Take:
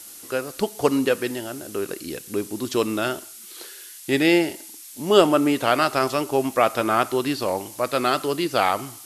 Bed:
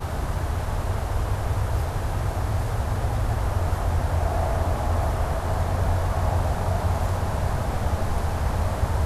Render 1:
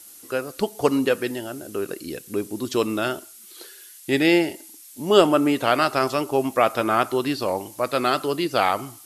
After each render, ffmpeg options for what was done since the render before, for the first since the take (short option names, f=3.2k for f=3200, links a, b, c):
-af "afftdn=nr=6:nf=-42"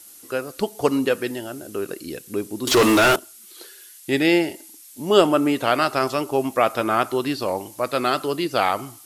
-filter_complex "[0:a]asettb=1/sr,asplit=3[a][b][c];[a]atrim=end=2.674[d];[b]atrim=start=2.67:end=3.16,asetpts=PTS-STARTPTS,afade=t=in:d=0.004:c=qsin,afade=t=out:st=0.486:d=0.004:c=qsin,asplit=2[e][f];[f]highpass=f=720:p=1,volume=31dB,asoftclip=type=tanh:threshold=-7.5dB[g];[e][g]amix=inputs=2:normalize=0,lowpass=f=4.5k:p=1,volume=-6dB[h];[c]atrim=start=3.156[i];[d][h]acrossfade=d=0.004:c1=hsin:c2=qsin[j];[j][i]acrossfade=d=0.004:c1=qsin:c2=hsin"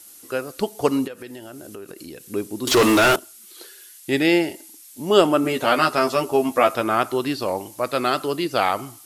-filter_complex "[0:a]asplit=3[a][b][c];[a]afade=t=out:st=1.06:d=0.02[d];[b]acompressor=threshold=-34dB:ratio=5:attack=3.2:release=140:knee=1:detection=peak,afade=t=in:st=1.06:d=0.02,afade=t=out:st=2.25:d=0.02[e];[c]afade=t=in:st=2.25:d=0.02[f];[d][e][f]amix=inputs=3:normalize=0,asettb=1/sr,asplit=3[g][h][i];[g]atrim=end=5.434[j];[h]atrim=start=5.43:end=6.75,asetpts=PTS-STARTPTS,afade=t=in:d=0.004:c=qsin,afade=t=out:st=1.316:d=0.004:c=qsin,asplit=2[k][l];[l]adelay=12,volume=-3dB[m];[k][m]amix=inputs=2:normalize=0,atrim=end_sample=58212[n];[i]atrim=start=6.746[o];[j][n]acrossfade=d=0.004:c1=hsin:c2=qsin[p];[p][o]acrossfade=d=0.004:c1=qsin:c2=hsin"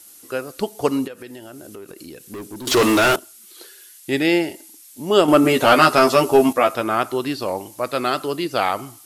-filter_complex "[0:a]asettb=1/sr,asplit=3[a][b][c];[a]atrim=end=1.744[d];[b]atrim=start=1.74:end=2.67,asetpts=PTS-STARTPTS,afade=t=in:d=0.004:c=qsin,afade=t=out:st=0.926:d=0.004:c=qsin,asoftclip=type=hard:threshold=-30dB[e];[c]atrim=start=2.666[f];[d][e]acrossfade=d=0.004:c1=hsin:c2=qsin[g];[g][f]acrossfade=d=0.004:c1=qsin:c2=hsin,asettb=1/sr,asplit=3[h][i][j];[h]atrim=end=5.284[k];[i]atrim=start=5.28:end=6.53,asetpts=PTS-STARTPTS,afade=t=in:d=0.004:c=qsin,afade=t=out:st=1.246:d=0.004:c=qsin,acontrast=73[l];[j]atrim=start=6.526[m];[k][l]acrossfade=d=0.004:c1=hsin:c2=qsin[n];[n][m]acrossfade=d=0.004:c1=qsin:c2=hsin"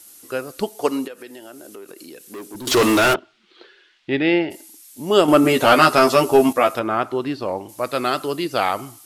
-filter_complex "[0:a]asettb=1/sr,asplit=3[a][b][c];[a]atrim=end=0.694[d];[b]atrim=start=0.69:end=2.55,asetpts=PTS-STARTPTS,afade=t=in:d=0.004:c=qsin,afade=t=out:st=1.856:d=0.004:c=qsin,highpass=260[e];[c]atrim=start=2.546[f];[d][e]acrossfade=d=0.004:c1=hsin:c2=qsin[g];[g][f]acrossfade=d=0.004:c1=qsin:c2=hsin,asplit=3[h][i][j];[h]afade=t=out:st=3.13:d=0.02[k];[i]lowpass=f=3.5k:w=0.5412,lowpass=f=3.5k:w=1.3066,afade=t=in:st=3.13:d=0.02,afade=t=out:st=4.5:d=0.02[l];[j]afade=t=in:st=4.5:d=0.02[m];[k][l][m]amix=inputs=3:normalize=0,asettb=1/sr,asplit=3[n][o][p];[n]atrim=end=6.794[q];[o]atrim=start=6.79:end=7.69,asetpts=PTS-STARTPTS,afade=t=in:d=0.004:c=qsin,afade=t=out:st=0.896:d=0.004:c=qsin,aemphasis=mode=reproduction:type=75kf[r];[p]atrim=start=7.686[s];[q][r]acrossfade=d=0.004:c1=hsin:c2=qsin[t];[t][s]acrossfade=d=0.004:c1=qsin:c2=hsin"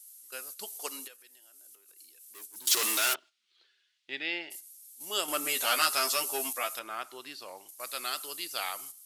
-af "agate=range=-9dB:threshold=-35dB:ratio=16:detection=peak,aderivative"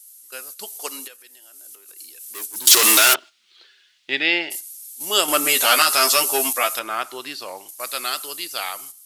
-af "dynaudnorm=f=480:g=7:m=11dB,alimiter=level_in=6dB:limit=-1dB:release=50:level=0:latency=1"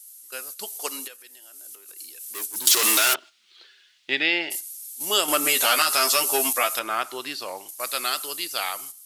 -af "acompressor=threshold=-19dB:ratio=2"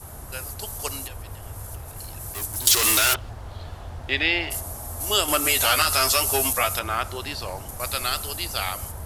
-filter_complex "[1:a]volume=-13dB[a];[0:a][a]amix=inputs=2:normalize=0"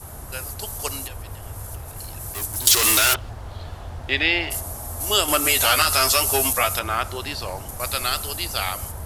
-af "volume=2dB"